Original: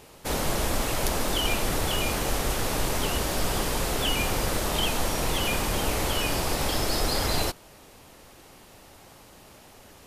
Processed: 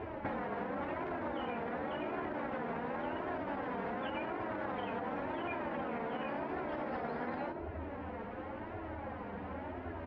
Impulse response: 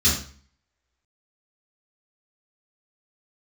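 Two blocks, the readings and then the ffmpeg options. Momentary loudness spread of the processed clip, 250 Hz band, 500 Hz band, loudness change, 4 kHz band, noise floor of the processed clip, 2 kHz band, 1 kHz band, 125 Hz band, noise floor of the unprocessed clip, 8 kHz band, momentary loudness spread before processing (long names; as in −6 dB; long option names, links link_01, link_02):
5 LU, −7.0 dB, −7.5 dB, −13.0 dB, −26.5 dB, −44 dBFS, −11.0 dB, −7.0 dB, −15.5 dB, −51 dBFS, below −40 dB, 2 LU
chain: -filter_complex "[0:a]flanger=delay=9.3:depth=4.2:regen=25:speed=0.23:shape=sinusoidal,lowpass=frequency=1800:width=0.5412,lowpass=frequency=1800:width=1.3066,equalizer=frequency=1200:width_type=o:width=0.21:gain=-6.5,asplit=2[link_01][link_02];[link_02]adelay=89,lowpass=frequency=1200:poles=1,volume=-16.5dB,asplit=2[link_03][link_04];[link_04]adelay=89,lowpass=frequency=1200:poles=1,volume=0.54,asplit=2[link_05][link_06];[link_06]adelay=89,lowpass=frequency=1200:poles=1,volume=0.54,asplit=2[link_07][link_08];[link_08]adelay=89,lowpass=frequency=1200:poles=1,volume=0.54,asplit=2[link_09][link_10];[link_10]adelay=89,lowpass=frequency=1200:poles=1,volume=0.54[link_11];[link_01][link_03][link_05][link_07][link_09][link_11]amix=inputs=6:normalize=0,asplit=2[link_12][link_13];[1:a]atrim=start_sample=2205[link_14];[link_13][link_14]afir=irnorm=-1:irlink=0,volume=-32.5dB[link_15];[link_12][link_15]amix=inputs=2:normalize=0,alimiter=level_in=5.5dB:limit=-24dB:level=0:latency=1:release=88,volume=-5.5dB,afftfilt=real='re*lt(hypot(re,im),0.0562)':imag='im*lt(hypot(re,im),0.0562)':win_size=1024:overlap=0.75,flanger=delay=2.8:depth=1.6:regen=17:speed=0.91:shape=triangular,acompressor=threshold=-54dB:ratio=6,highpass=61,volume=18dB"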